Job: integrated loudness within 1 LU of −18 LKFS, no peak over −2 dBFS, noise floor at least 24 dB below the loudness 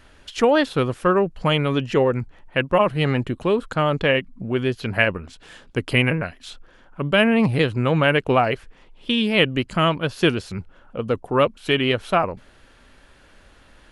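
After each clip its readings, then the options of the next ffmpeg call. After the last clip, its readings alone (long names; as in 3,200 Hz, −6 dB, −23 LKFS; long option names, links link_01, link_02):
integrated loudness −21.0 LKFS; sample peak −2.5 dBFS; target loudness −18.0 LKFS
→ -af "volume=3dB,alimiter=limit=-2dB:level=0:latency=1"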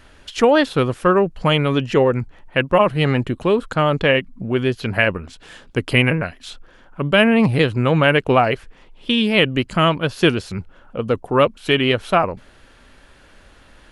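integrated loudness −18.0 LKFS; sample peak −2.0 dBFS; background noise floor −49 dBFS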